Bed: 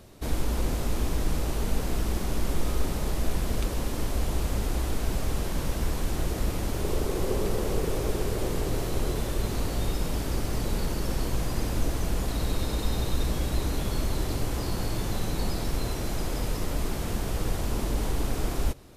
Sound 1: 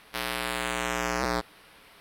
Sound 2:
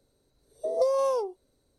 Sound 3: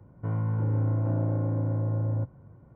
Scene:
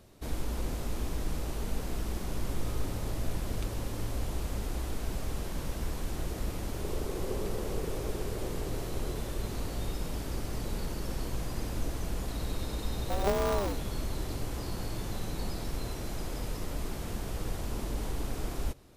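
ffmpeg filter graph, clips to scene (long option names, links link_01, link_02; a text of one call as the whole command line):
ffmpeg -i bed.wav -i cue0.wav -i cue1.wav -i cue2.wav -filter_complex "[0:a]volume=-6.5dB[link_01];[2:a]aeval=exprs='val(0)*sgn(sin(2*PI*100*n/s))':channel_layout=same[link_02];[3:a]atrim=end=2.75,asetpts=PTS-STARTPTS,volume=-16.5dB,afade=type=in:duration=0.004:curve=hsin,afade=type=out:start_time=2.746:duration=0.004:curve=hsin,adelay=2020[link_03];[link_02]atrim=end=1.78,asetpts=PTS-STARTPTS,volume=-5dB,afade=type=in:duration=0.004:curve=hsin,afade=type=out:start_time=1.776:duration=0.004:curve=hsin,adelay=12460[link_04];[link_01][link_03][link_04]amix=inputs=3:normalize=0" out.wav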